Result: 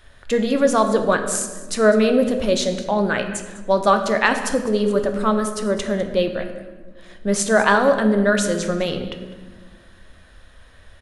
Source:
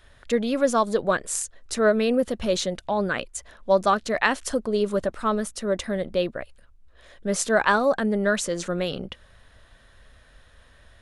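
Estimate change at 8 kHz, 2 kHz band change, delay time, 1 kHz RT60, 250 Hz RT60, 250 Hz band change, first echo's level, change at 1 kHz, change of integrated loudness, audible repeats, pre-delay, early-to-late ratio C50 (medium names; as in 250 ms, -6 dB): +4.0 dB, +4.5 dB, 202 ms, 1.3 s, 2.3 s, +6.0 dB, -17.5 dB, +4.5 dB, +4.5 dB, 1, 10 ms, 8.0 dB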